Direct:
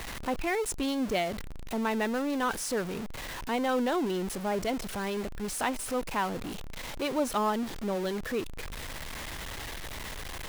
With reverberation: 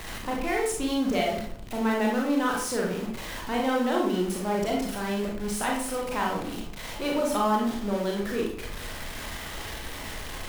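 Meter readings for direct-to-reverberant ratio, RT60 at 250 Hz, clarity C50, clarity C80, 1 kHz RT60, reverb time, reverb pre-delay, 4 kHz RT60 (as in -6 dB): -1.5 dB, 0.75 s, 3.5 dB, 7.5 dB, 0.50 s, 0.55 s, 28 ms, 0.40 s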